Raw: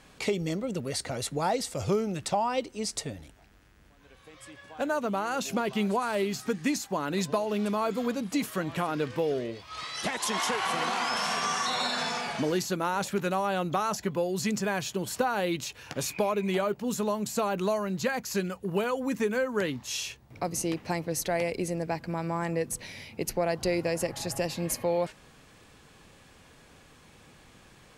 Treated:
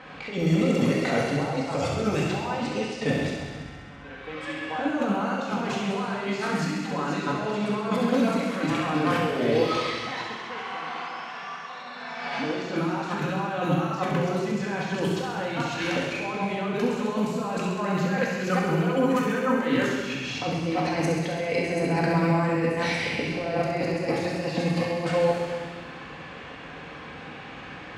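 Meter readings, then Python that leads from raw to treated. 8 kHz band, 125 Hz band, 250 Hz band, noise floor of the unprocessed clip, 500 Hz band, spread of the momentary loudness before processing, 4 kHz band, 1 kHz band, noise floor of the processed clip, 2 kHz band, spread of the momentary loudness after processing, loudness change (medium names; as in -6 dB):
-7.5 dB, +7.5 dB, +6.0 dB, -56 dBFS, +3.0 dB, 5 LU, 0.0 dB, +2.0 dB, -41 dBFS, +5.0 dB, 14 LU, +3.5 dB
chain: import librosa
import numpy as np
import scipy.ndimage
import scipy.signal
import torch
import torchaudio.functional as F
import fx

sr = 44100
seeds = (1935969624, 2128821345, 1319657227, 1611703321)

p1 = fx.reverse_delay(x, sr, ms=224, wet_db=-10.5)
p2 = fx.tilt_eq(p1, sr, slope=3.0)
p3 = fx.over_compress(p2, sr, threshold_db=-38.0, ratio=-1.0)
p4 = fx.lowpass(p3, sr, hz=3900.0, slope=6)
p5 = fx.high_shelf(p4, sr, hz=2500.0, db=-11.5)
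p6 = fx.env_lowpass(p5, sr, base_hz=2600.0, full_db=-31.0)
p7 = scipy.signal.sosfilt(scipy.signal.butter(2, 55.0, 'highpass', fs=sr, output='sos'), p6)
p8 = p7 + fx.echo_wet_highpass(p7, sr, ms=66, feedback_pct=77, hz=1600.0, wet_db=-6, dry=0)
p9 = fx.room_shoebox(p8, sr, seeds[0], volume_m3=820.0, walls='mixed', distance_m=2.0)
y = p9 * librosa.db_to_amplitude(7.5)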